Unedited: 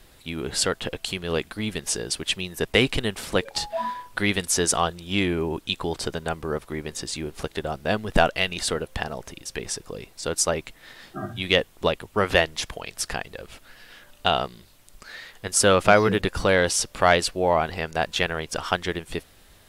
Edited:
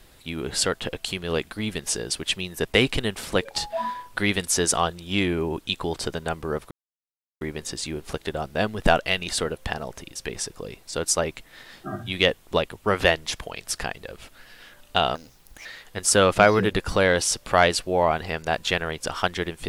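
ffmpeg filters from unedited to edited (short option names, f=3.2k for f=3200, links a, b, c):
-filter_complex "[0:a]asplit=4[a][b][c][d];[a]atrim=end=6.71,asetpts=PTS-STARTPTS,afade=t=out:st=6.706:d=0.004:c=hsin,apad=pad_dur=0.7[e];[b]atrim=start=6.71:end=14.454,asetpts=PTS-STARTPTS,afade=t=in:d=0.004:c=hsin[f];[c]atrim=start=14.45:end=15.14,asetpts=PTS-STARTPTS,asetrate=60417,aresample=44100[g];[d]atrim=start=15.136[h];[e][f]concat=n=2:v=0:a=1[i];[i][g]acrossfade=d=0.004:c1=hsin:c2=hsin[j];[j][h]acrossfade=d=0.004:c1=hsin:c2=hsin"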